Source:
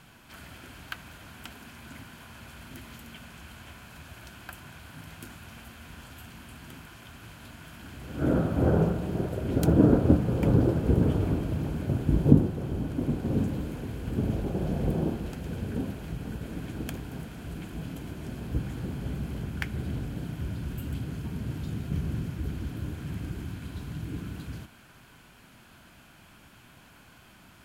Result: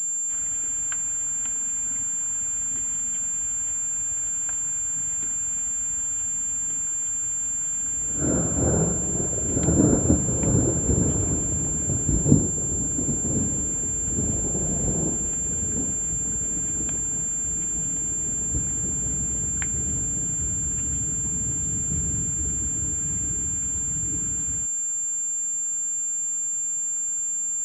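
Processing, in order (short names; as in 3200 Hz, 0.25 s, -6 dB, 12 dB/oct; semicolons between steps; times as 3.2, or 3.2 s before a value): pulse-width modulation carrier 7300 Hz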